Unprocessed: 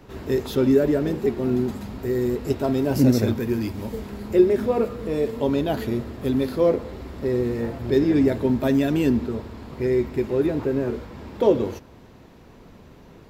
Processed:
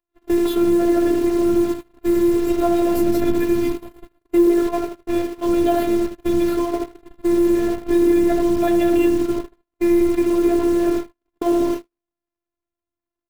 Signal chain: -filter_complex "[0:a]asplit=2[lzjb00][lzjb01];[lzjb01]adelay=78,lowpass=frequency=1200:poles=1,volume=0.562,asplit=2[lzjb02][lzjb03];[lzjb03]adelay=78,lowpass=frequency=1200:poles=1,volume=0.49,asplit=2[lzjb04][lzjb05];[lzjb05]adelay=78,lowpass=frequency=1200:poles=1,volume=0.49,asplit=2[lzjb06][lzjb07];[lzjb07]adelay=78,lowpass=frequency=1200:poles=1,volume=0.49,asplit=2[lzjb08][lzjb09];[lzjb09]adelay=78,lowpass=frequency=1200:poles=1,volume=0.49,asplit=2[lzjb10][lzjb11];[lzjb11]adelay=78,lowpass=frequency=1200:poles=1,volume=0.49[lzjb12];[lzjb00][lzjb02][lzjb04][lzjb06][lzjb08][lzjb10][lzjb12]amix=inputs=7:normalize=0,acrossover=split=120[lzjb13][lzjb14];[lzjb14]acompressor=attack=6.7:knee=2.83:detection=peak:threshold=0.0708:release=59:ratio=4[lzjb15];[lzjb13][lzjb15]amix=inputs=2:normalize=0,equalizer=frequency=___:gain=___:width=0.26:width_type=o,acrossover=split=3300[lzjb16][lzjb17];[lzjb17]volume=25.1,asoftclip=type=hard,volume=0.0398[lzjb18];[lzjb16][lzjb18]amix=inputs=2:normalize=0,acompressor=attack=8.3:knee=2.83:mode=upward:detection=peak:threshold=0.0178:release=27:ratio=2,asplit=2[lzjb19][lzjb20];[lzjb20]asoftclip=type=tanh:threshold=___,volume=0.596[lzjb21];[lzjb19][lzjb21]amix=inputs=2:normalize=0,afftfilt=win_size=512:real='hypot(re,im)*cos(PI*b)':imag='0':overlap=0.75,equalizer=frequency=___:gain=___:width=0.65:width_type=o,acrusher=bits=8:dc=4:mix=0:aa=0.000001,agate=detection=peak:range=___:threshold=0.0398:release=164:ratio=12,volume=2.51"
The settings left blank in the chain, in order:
490, -6.5, 0.0668, 5500, -13.5, 0.00178